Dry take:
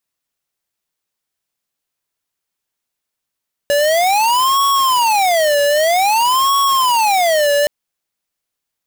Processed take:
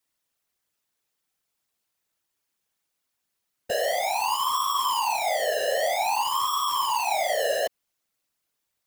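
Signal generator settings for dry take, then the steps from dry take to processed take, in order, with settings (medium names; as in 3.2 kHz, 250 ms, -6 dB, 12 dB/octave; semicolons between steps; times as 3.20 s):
siren wail 574–1110 Hz 0.52 per s square -13.5 dBFS 3.97 s
peak limiter -25 dBFS; whisper effect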